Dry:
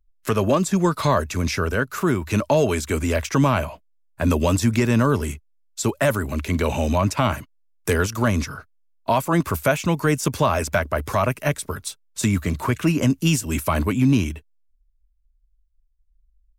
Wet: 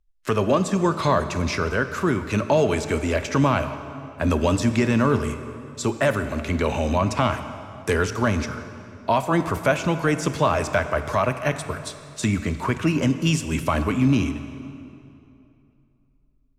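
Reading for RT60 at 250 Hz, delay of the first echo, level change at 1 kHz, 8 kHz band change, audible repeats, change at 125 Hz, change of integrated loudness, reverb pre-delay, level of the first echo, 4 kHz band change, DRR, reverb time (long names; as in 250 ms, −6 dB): 2.9 s, no echo audible, 0.0 dB, −4.5 dB, no echo audible, −2.5 dB, −1.0 dB, 18 ms, no echo audible, −1.0 dB, 9.5 dB, 2.7 s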